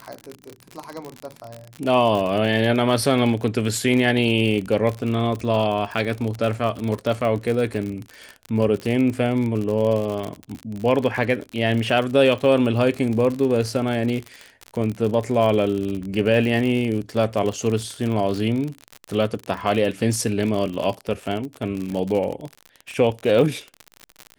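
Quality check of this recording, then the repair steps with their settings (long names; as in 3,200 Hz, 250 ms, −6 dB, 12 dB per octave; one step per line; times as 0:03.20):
surface crackle 56 per second −25 dBFS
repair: click removal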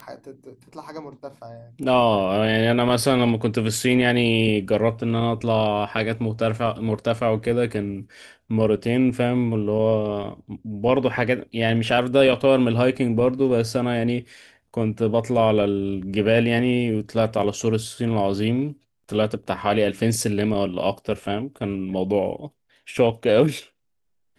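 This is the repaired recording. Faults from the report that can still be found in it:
none of them is left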